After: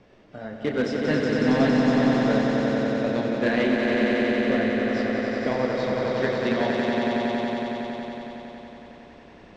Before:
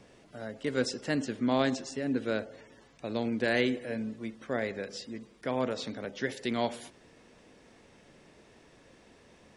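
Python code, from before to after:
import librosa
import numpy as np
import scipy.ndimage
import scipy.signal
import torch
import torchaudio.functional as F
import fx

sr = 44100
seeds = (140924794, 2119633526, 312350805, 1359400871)

p1 = fx.chorus_voices(x, sr, voices=6, hz=1.2, base_ms=30, depth_ms=3.1, mix_pct=40)
p2 = fx.transient(p1, sr, attack_db=6, sustain_db=0)
p3 = (np.mod(10.0 ** (21.5 / 20.0) * p2 + 1.0, 2.0) - 1.0) / 10.0 ** (21.5 / 20.0)
p4 = p2 + (p3 * 10.0 ** (-11.5 / 20.0))
p5 = fx.air_absorb(p4, sr, metres=170.0)
p6 = fx.echo_swell(p5, sr, ms=92, loudest=5, wet_db=-4)
y = p6 * 10.0 ** (3.5 / 20.0)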